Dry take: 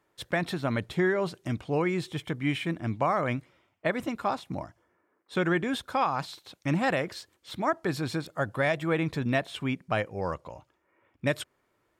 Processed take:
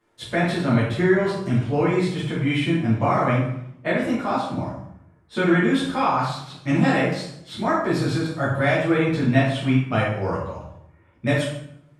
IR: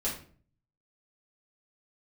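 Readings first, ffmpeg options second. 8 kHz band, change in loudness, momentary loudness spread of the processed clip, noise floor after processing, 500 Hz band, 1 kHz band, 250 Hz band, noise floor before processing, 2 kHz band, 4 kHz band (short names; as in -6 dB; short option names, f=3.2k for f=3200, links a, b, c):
+5.0 dB, +8.0 dB, 10 LU, -55 dBFS, +6.5 dB, +6.0 dB, +9.5 dB, -73 dBFS, +6.0 dB, +6.0 dB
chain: -filter_complex "[1:a]atrim=start_sample=2205,asetrate=23373,aresample=44100[a];[0:a][a]afir=irnorm=-1:irlink=0,volume=-3.5dB"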